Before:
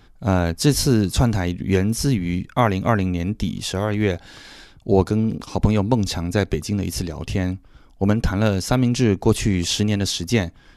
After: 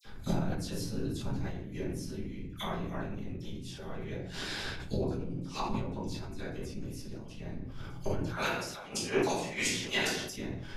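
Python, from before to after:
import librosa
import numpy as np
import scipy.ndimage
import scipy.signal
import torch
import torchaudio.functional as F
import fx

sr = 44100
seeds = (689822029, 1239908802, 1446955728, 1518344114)

y = fx.highpass(x, sr, hz=770.0, slope=12, at=(8.22, 10.27))
y = fx.dispersion(y, sr, late='lows', ms=51.0, hz=2600.0)
y = fx.gate_flip(y, sr, shuts_db=-20.0, range_db=-24)
y = fx.whisperise(y, sr, seeds[0])
y = fx.room_shoebox(y, sr, seeds[1], volume_m3=83.0, walls='mixed', distance_m=1.3)
y = fx.sustainer(y, sr, db_per_s=49.0)
y = y * 10.0 ** (-2.0 / 20.0)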